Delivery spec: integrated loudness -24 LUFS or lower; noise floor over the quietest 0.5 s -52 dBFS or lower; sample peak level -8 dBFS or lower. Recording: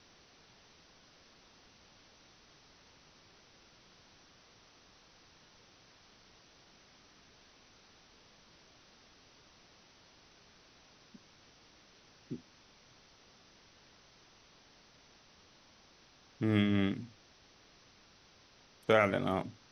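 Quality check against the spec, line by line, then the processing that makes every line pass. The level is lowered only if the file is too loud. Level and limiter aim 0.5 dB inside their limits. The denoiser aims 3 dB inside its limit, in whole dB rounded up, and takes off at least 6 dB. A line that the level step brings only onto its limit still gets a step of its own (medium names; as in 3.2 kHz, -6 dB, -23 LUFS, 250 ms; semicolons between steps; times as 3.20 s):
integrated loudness -32.5 LUFS: pass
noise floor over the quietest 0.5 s -63 dBFS: pass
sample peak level -12.0 dBFS: pass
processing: none needed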